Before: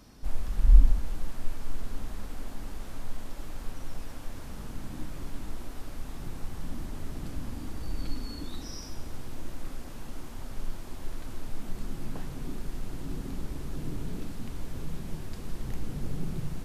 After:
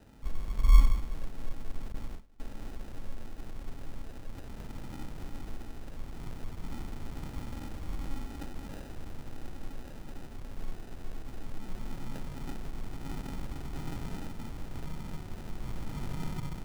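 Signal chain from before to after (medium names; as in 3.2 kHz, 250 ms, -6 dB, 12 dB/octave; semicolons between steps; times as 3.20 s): comb filter that takes the minimum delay 0.38 ms; sample-and-hold 40×; 1.92–2.40 s: gate with hold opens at -26 dBFS; trim -2 dB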